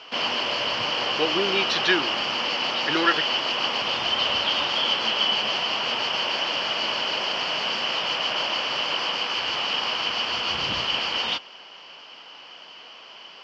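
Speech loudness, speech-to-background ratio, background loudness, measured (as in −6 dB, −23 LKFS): −25.5 LKFS, −2.0 dB, −23.5 LKFS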